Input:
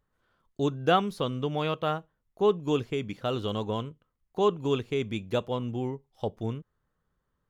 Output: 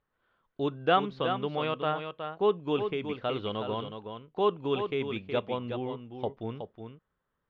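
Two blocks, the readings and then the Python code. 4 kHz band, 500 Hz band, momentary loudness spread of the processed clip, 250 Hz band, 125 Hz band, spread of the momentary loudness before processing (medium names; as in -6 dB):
-1.0 dB, -1.0 dB, 13 LU, -3.0 dB, -5.5 dB, 11 LU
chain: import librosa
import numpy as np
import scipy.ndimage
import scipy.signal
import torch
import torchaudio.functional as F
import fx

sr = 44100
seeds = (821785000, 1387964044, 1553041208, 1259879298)

y = scipy.signal.sosfilt(scipy.signal.butter(4, 3600.0, 'lowpass', fs=sr, output='sos'), x)
y = fx.low_shelf(y, sr, hz=230.0, db=-9.0)
y = y + 10.0 ** (-7.5 / 20.0) * np.pad(y, (int(369 * sr / 1000.0), 0))[:len(y)]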